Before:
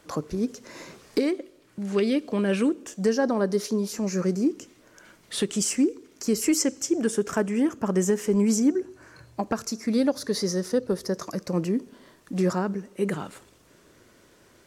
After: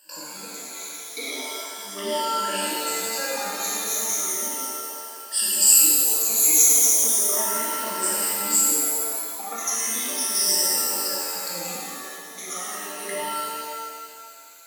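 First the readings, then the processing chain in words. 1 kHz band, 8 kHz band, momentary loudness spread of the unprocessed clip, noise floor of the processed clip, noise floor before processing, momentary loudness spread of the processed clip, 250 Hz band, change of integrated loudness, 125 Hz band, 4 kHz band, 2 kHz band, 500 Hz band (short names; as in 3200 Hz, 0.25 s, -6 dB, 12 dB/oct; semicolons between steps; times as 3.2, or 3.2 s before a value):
+7.0 dB, +15.0 dB, 11 LU, -41 dBFS, -58 dBFS, 20 LU, -15.0 dB, +6.0 dB, under -15 dB, +9.5 dB, +5.0 dB, -7.0 dB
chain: moving spectral ripple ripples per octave 1.3, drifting -0.36 Hz, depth 24 dB; differentiator; shimmer reverb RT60 2 s, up +7 st, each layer -2 dB, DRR -7 dB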